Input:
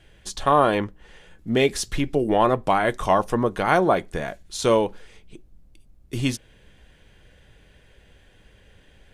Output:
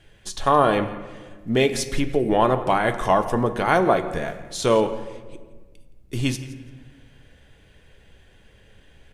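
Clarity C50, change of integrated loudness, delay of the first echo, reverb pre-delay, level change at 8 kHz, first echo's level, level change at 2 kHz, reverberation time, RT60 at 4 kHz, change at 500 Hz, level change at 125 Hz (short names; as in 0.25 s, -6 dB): 11.0 dB, +0.5 dB, 0.169 s, 5 ms, +0.5 dB, -18.5 dB, +0.5 dB, 1.5 s, 0.75 s, +0.5 dB, +1.5 dB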